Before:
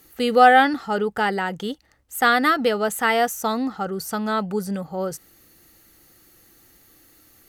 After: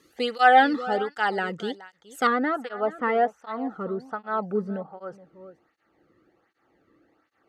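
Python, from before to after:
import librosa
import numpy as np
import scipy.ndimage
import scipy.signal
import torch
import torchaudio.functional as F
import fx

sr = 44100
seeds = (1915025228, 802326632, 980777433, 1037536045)

y = fx.lowpass(x, sr, hz=fx.steps((0.0, 6100.0), (2.27, 1400.0)), slope=12)
y = y + 10.0 ** (-17.5 / 20.0) * np.pad(y, (int(421 * sr / 1000.0), 0))[:len(y)]
y = fx.flanger_cancel(y, sr, hz=1.3, depth_ms=1.4)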